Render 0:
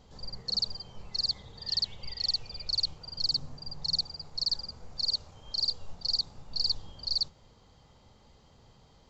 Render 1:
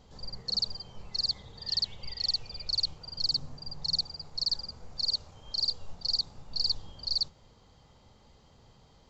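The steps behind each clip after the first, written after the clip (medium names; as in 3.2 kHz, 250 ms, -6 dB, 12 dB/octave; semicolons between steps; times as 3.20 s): no audible change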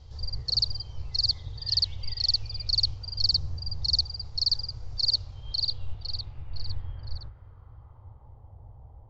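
octave divider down 1 oct, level +1 dB; low-pass sweep 5.2 kHz -> 810 Hz, 5.04–8.54 s; resonant low shelf 140 Hz +9.5 dB, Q 3; trim -2.5 dB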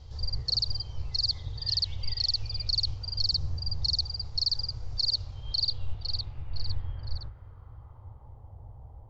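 peak limiter -19.5 dBFS, peak gain reduction 7 dB; trim +1.5 dB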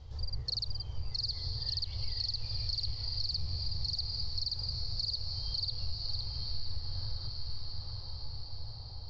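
echo that smears into a reverb 935 ms, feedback 59%, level -6 dB; compression 3:1, threshold -28 dBFS, peak gain reduction 6 dB; distance through air 55 m; trim -2 dB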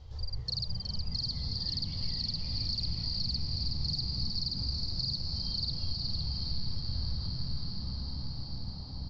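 frequency-shifting echo 368 ms, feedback 43%, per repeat +62 Hz, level -5 dB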